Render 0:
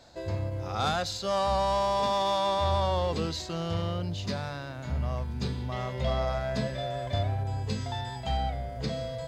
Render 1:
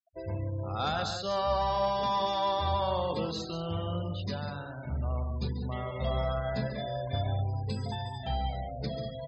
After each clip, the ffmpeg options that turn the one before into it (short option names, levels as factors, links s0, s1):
-af "aecho=1:1:139.9|192.4:0.398|0.355,afftfilt=real='re*gte(hypot(re,im),0.0141)':imag='im*gte(hypot(re,im),0.0141)':win_size=1024:overlap=0.75,volume=0.708"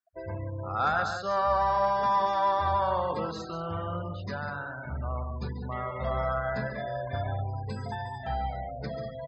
-af "firequalizer=gain_entry='entry(250,0);entry(1500,12);entry(3000,-7);entry(5300,-2)':delay=0.05:min_phase=1,volume=0.794"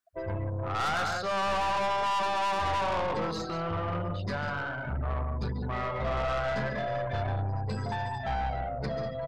-af "aeval=exprs='(tanh(39.8*val(0)+0.3)-tanh(0.3))/39.8':c=same,volume=1.88"